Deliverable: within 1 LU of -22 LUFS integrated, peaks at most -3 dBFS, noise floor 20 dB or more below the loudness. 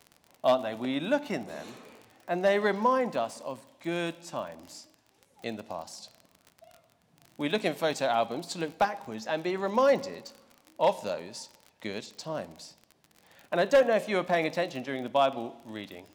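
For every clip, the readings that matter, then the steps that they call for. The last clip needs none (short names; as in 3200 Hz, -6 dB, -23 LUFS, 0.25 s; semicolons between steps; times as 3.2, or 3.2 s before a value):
ticks 39/s; loudness -29.5 LUFS; peak -14.5 dBFS; loudness target -22.0 LUFS
-> de-click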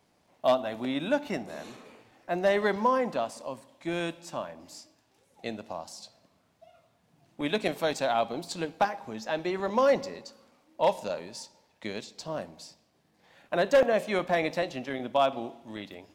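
ticks 0.25/s; loudness -29.5 LUFS; peak -12.0 dBFS; loudness target -22.0 LUFS
-> gain +7.5 dB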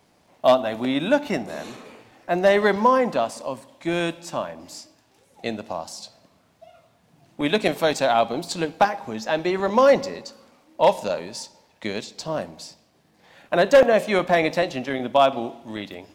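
loudness -22.0 LUFS; peak -4.5 dBFS; noise floor -61 dBFS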